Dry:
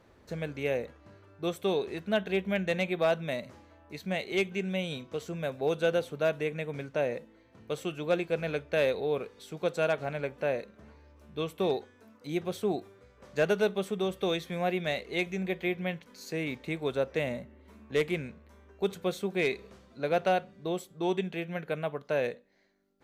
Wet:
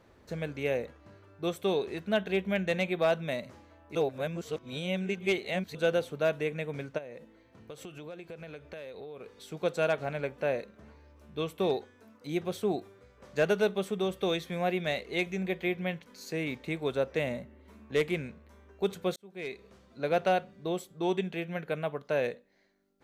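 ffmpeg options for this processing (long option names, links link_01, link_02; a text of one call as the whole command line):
ffmpeg -i in.wav -filter_complex "[0:a]asplit=3[link_01][link_02][link_03];[link_01]afade=type=out:start_time=6.97:duration=0.02[link_04];[link_02]acompressor=threshold=-40dB:ratio=10:attack=3.2:release=140:knee=1:detection=peak,afade=type=in:start_time=6.97:duration=0.02,afade=type=out:start_time=9.39:duration=0.02[link_05];[link_03]afade=type=in:start_time=9.39:duration=0.02[link_06];[link_04][link_05][link_06]amix=inputs=3:normalize=0,asplit=4[link_07][link_08][link_09][link_10];[link_07]atrim=end=3.952[link_11];[link_08]atrim=start=3.948:end=5.752,asetpts=PTS-STARTPTS,areverse[link_12];[link_09]atrim=start=5.748:end=19.16,asetpts=PTS-STARTPTS,afade=type=out:start_time=13.408:duration=0.004:curve=hsin[link_13];[link_10]atrim=start=19.16,asetpts=PTS-STARTPTS,afade=type=in:duration=0.91[link_14];[link_11][link_12]acrossfade=duration=0.004:curve1=hsin:curve2=hsin[link_15];[link_13][link_14]concat=n=2:v=0:a=1[link_16];[link_15][link_16]acrossfade=duration=0.004:curve1=hsin:curve2=hsin" out.wav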